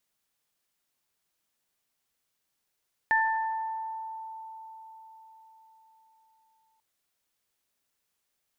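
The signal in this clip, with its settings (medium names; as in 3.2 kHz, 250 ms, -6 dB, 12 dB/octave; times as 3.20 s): additive tone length 3.69 s, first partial 888 Hz, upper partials 3 dB, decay 4.88 s, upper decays 1.11 s, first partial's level -23.5 dB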